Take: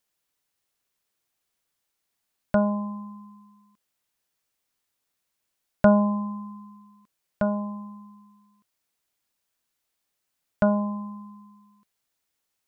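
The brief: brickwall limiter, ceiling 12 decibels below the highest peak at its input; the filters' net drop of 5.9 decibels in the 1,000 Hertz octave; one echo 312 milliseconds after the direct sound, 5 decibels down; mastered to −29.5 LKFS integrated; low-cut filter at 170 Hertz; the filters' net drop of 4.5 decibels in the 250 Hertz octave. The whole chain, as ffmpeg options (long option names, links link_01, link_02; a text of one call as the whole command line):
ffmpeg -i in.wav -af "highpass=170,equalizer=frequency=250:width_type=o:gain=-3.5,equalizer=frequency=1000:width_type=o:gain=-6.5,alimiter=limit=-19.5dB:level=0:latency=1,aecho=1:1:312:0.562,volume=3.5dB" out.wav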